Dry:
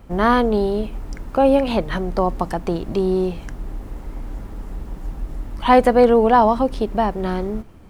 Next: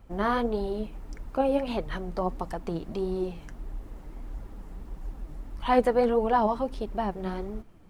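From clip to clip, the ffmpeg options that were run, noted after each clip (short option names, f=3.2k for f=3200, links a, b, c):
-af "flanger=delay=0.7:depth=6.3:regen=53:speed=1.6:shape=triangular,volume=-6dB"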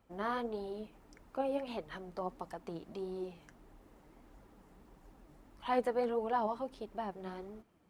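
-af "highpass=f=230:p=1,volume=-9dB"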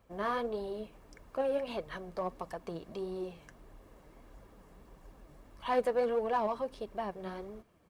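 -filter_complex "[0:a]aecho=1:1:1.8:0.33,asplit=2[a][b];[b]asoftclip=type=hard:threshold=-35dB,volume=-7dB[c];[a][c]amix=inputs=2:normalize=0"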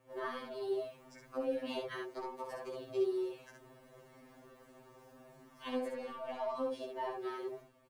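-filter_complex "[0:a]alimiter=level_in=6dB:limit=-24dB:level=0:latency=1:release=132,volume=-6dB,asplit=2[a][b];[b]aecho=0:1:11|67:0.398|0.668[c];[a][c]amix=inputs=2:normalize=0,afftfilt=real='re*2.45*eq(mod(b,6),0)':imag='im*2.45*eq(mod(b,6),0)':win_size=2048:overlap=0.75,volume=1.5dB"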